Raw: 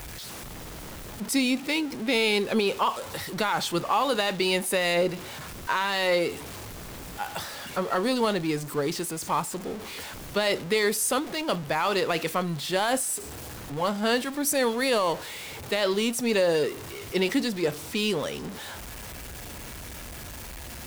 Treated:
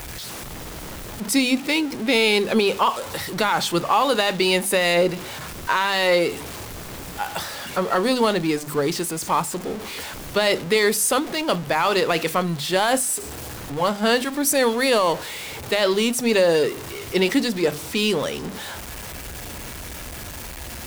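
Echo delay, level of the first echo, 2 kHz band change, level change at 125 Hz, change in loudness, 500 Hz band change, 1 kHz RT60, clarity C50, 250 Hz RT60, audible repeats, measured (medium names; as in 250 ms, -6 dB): no echo, no echo, +5.5 dB, +4.5 dB, +5.5 dB, +5.5 dB, no reverb, no reverb, no reverb, no echo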